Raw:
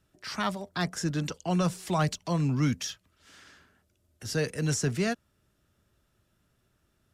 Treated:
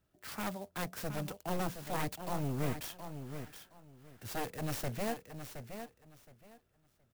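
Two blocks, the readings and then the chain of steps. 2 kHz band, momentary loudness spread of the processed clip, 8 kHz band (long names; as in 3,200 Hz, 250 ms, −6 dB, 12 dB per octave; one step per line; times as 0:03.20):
−8.0 dB, 13 LU, −9.5 dB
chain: wavefolder on the positive side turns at −30.5 dBFS
parametric band 690 Hz +3.5 dB 0.77 octaves
on a send: repeating echo 719 ms, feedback 21%, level −9 dB
on the sum: converter with an unsteady clock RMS 0.043 ms
level −7 dB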